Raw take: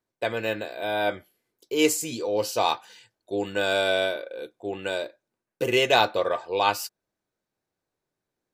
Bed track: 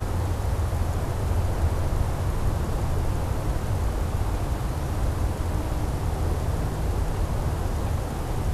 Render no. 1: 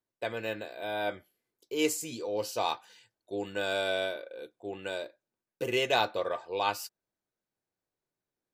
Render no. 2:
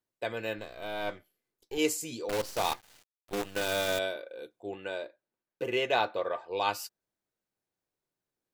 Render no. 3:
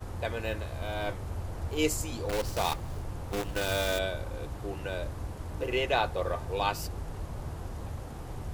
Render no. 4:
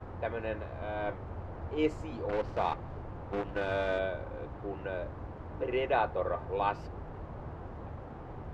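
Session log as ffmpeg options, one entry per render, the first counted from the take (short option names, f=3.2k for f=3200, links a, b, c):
-af "volume=-7dB"
-filter_complex "[0:a]asettb=1/sr,asplit=3[a][b][c];[a]atrim=end=0.584[d];[b]atrim=start=0.58:end=1.78,asetpts=PTS-STARTPTS,afade=t=in:d=0.004:c=qsin,afade=t=out:st=1.196:d=0.004:c=qsin,aeval=exprs='if(lt(val(0),0),0.447*val(0),val(0))':c=same[e];[c]atrim=start=1.776[f];[d][e]acrossfade=d=0.004:c1=hsin:c2=qsin[g];[g][f]acrossfade=d=0.004:c1=qsin:c2=hsin,asettb=1/sr,asplit=3[h][i][j];[h]atrim=end=2.294[k];[i]atrim=start=2.29:end=3.99,asetpts=PTS-STARTPTS,afade=t=in:d=0.004:c=qsin,afade=t=out:st=1.696:d=0.004:c=qsin,acrusher=bits=6:dc=4:mix=0:aa=0.000001[l];[j]atrim=start=3.986[m];[k][l]acrossfade=d=0.004:c1=hsin:c2=qsin[n];[n][m]acrossfade=d=0.004:c1=qsin:c2=hsin,asettb=1/sr,asplit=3[o][p][q];[o]atrim=end=4.754[r];[p]atrim=start=4.75:end=6.51,asetpts=PTS-STARTPTS,afade=t=in:d=0.004:c=qsin,afade=t=out:st=1.756:d=0.004:c=qsin,bass=f=250:g=-4,treble=f=4k:g=-10[s];[q]atrim=start=6.506[t];[r][s]acrossfade=d=0.004:c1=hsin:c2=qsin[u];[u][t]acrossfade=d=0.004:c1=qsin:c2=hsin"
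-filter_complex "[1:a]volume=-12dB[a];[0:a][a]amix=inputs=2:normalize=0"
-af "lowpass=1.7k,lowshelf=f=110:g=-9.5"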